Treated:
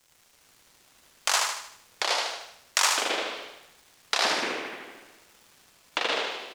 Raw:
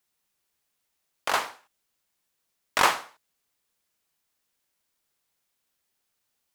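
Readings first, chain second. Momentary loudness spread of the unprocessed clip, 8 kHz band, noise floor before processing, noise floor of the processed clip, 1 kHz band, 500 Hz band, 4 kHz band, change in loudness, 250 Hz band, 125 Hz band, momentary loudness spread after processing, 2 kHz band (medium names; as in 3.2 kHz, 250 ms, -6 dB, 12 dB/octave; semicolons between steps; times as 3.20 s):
12 LU, +9.5 dB, -78 dBFS, -61 dBFS, 0.0 dB, +4.5 dB, +9.0 dB, -0.5 dB, +5.5 dB, no reading, 17 LU, +3.5 dB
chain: high-pass 610 Hz 12 dB/octave; peaking EQ 6.5 kHz +14.5 dB 1.8 oct; compression 4:1, threshold -21 dBFS, peak gain reduction 9 dB; crackle 440 per s -47 dBFS; ever faster or slower copies 215 ms, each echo -6 st, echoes 3; feedback delay 76 ms, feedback 44%, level -4 dB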